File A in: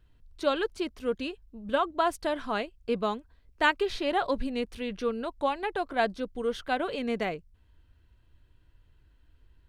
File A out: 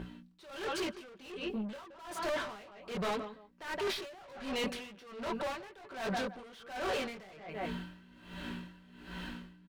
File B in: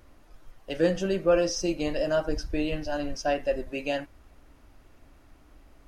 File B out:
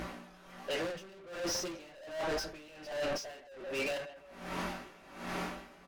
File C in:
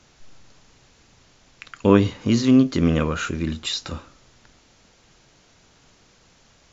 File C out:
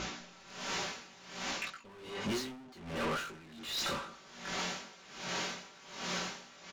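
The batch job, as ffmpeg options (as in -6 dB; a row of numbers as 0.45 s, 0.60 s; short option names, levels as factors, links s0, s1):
-filter_complex "[0:a]dynaudnorm=f=110:g=5:m=3.35,aeval=exprs='val(0)+0.00631*(sin(2*PI*60*n/s)+sin(2*PI*2*60*n/s)/2+sin(2*PI*3*60*n/s)/3+sin(2*PI*4*60*n/s)/4+sin(2*PI*5*60*n/s)/5)':c=same,bandreject=f=60:t=h:w=6,bandreject=f=120:t=h:w=6,asoftclip=type=hard:threshold=0.422,aecho=1:1:5.2:0.5,asplit=2[s0][s1];[s1]adelay=167,lowpass=f=2300:p=1,volume=0.15,asplit=2[s2][s3];[s3]adelay=167,lowpass=f=2300:p=1,volume=0.2[s4];[s0][s2][s4]amix=inputs=3:normalize=0,flanger=delay=18.5:depth=4.3:speed=1.2,asplit=2[s5][s6];[s6]highpass=f=720:p=1,volume=79.4,asoftclip=type=tanh:threshold=0.562[s7];[s5][s7]amix=inputs=2:normalize=0,lowpass=f=3500:p=1,volume=0.501,areverse,acompressor=threshold=0.0501:ratio=10,areverse,aeval=exprs='val(0)*pow(10,-21*(0.5-0.5*cos(2*PI*1.3*n/s))/20)':c=same,volume=0.473"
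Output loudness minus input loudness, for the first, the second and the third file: -9.0 LU, -11.0 LU, -18.5 LU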